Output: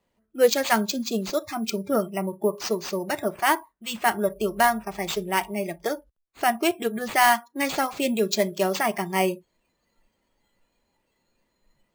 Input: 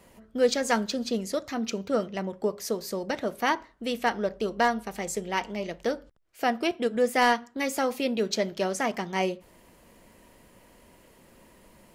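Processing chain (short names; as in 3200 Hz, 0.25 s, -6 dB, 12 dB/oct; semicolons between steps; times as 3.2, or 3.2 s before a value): spectral noise reduction 23 dB; sample-and-hold 4×; gain +4.5 dB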